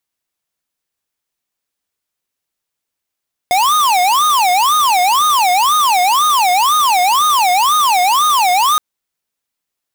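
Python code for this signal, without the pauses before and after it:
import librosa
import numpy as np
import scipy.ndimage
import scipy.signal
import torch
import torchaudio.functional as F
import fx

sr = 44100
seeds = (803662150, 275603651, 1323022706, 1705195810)

y = fx.siren(sr, length_s=5.27, kind='wail', low_hz=715.0, high_hz=1240.0, per_s=2.0, wave='square', level_db=-12.0)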